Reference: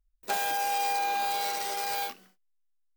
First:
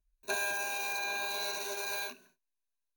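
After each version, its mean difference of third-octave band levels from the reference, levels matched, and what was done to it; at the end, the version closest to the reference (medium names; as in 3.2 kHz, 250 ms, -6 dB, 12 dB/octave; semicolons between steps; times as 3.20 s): 5.5 dB: rippled EQ curve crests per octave 1.5, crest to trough 17 dB; trim -6 dB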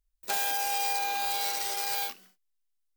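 3.0 dB: treble shelf 2.1 kHz +8.5 dB; trim -4.5 dB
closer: second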